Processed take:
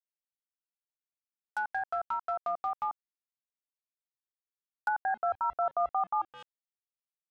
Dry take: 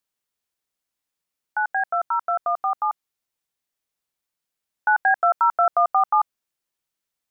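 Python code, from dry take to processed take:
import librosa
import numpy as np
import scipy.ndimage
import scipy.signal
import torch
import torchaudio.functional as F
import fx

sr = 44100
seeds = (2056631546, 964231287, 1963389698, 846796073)

y = x + 10.0 ** (-18.0 / 20.0) * np.pad(x, (int(212 * sr / 1000.0), 0))[:len(x)]
y = np.where(np.abs(y) >= 10.0 ** (-30.5 / 20.0), y, 0.0)
y = fx.env_lowpass_down(y, sr, base_hz=1000.0, full_db=-18.0)
y = y * librosa.db_to_amplitude(-8.5)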